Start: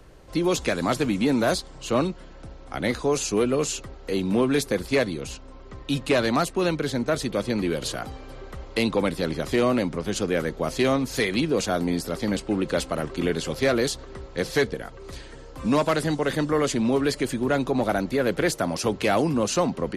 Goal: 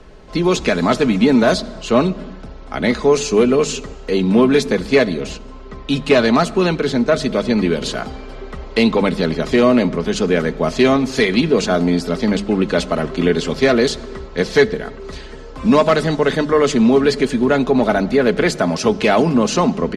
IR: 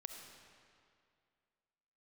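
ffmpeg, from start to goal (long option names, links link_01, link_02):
-filter_complex "[0:a]lowpass=5900,bandreject=frequency=50:width_type=h:width=6,bandreject=frequency=100:width_type=h:width=6,bandreject=frequency=150:width_type=h:width=6,bandreject=frequency=200:width_type=h:width=6,aecho=1:1:4.7:0.45,asplit=2[link_01][link_02];[link_02]equalizer=frequency=240:width_type=o:width=2.1:gain=6.5[link_03];[1:a]atrim=start_sample=2205,afade=type=out:start_time=0.4:duration=0.01,atrim=end_sample=18081[link_04];[link_03][link_04]afir=irnorm=-1:irlink=0,volume=-9.5dB[link_05];[link_01][link_05]amix=inputs=2:normalize=0,volume=5.5dB"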